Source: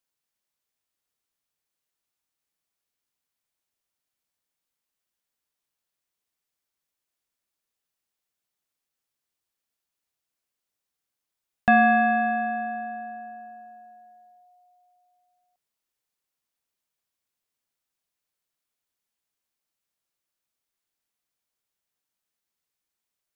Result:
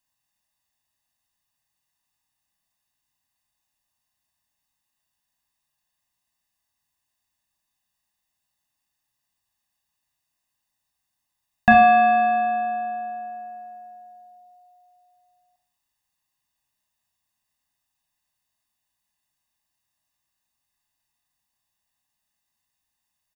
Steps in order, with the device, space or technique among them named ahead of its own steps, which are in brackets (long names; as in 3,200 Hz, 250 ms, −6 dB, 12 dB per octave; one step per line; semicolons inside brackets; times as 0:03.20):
microphone above a desk (comb filter 1.1 ms, depth 89%; convolution reverb RT60 0.35 s, pre-delay 29 ms, DRR 3 dB)
level +1.5 dB